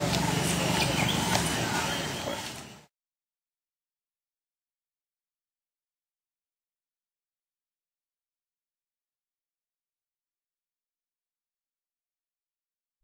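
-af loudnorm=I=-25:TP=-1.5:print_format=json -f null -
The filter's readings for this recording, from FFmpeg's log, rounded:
"input_i" : "-27.5",
"input_tp" : "-9.2",
"input_lra" : "12.2",
"input_thresh" : "-38.3",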